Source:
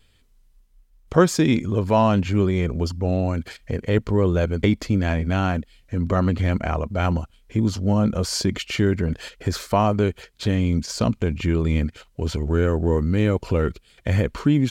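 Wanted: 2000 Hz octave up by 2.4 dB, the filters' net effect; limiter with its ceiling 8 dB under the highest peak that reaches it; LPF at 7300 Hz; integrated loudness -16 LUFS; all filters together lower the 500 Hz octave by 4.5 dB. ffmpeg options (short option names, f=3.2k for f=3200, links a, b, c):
-af "lowpass=7.3k,equalizer=f=500:t=o:g=-6,equalizer=f=2k:t=o:g=3.5,volume=9dB,alimiter=limit=-3.5dB:level=0:latency=1"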